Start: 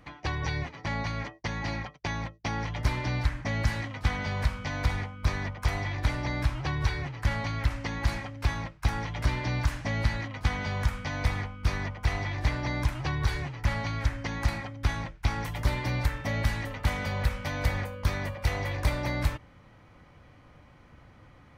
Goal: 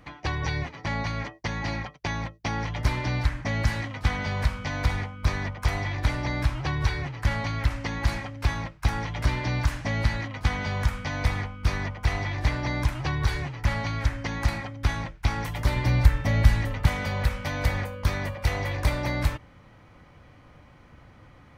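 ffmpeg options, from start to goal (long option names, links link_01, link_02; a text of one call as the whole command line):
ffmpeg -i in.wav -filter_complex "[0:a]asettb=1/sr,asplit=3[link_01][link_02][link_03];[link_01]atrim=end=15.764[link_04];[link_02]atrim=start=15.76:end=16.86,asetpts=PTS-STARTPTS,afade=type=in:duration=0.004:curve=qsin,afade=type=out:start_time=1.096:duration=0.004:curve=qsin,lowshelf=frequency=130:gain=10[link_05];[link_03]atrim=start=16.856[link_06];[link_04][link_05]acrossfade=duration=0.004:curve1=hsin:curve2=qsin[link_07];[link_07][link_06]acrossfade=duration=0.004:curve1=qsin:curve2=hsin,volume=2.5dB" out.wav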